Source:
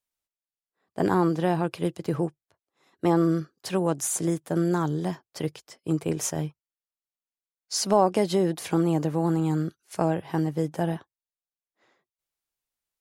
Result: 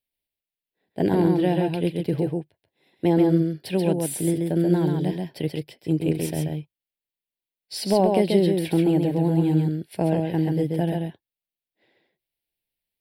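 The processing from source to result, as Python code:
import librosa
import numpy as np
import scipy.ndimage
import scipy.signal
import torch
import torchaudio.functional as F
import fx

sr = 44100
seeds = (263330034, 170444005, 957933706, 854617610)

y = fx.fixed_phaser(x, sr, hz=2900.0, stages=4)
y = y + 10.0 ** (-3.5 / 20.0) * np.pad(y, (int(134 * sr / 1000.0), 0))[:len(y)]
y = y * librosa.db_to_amplitude(3.5)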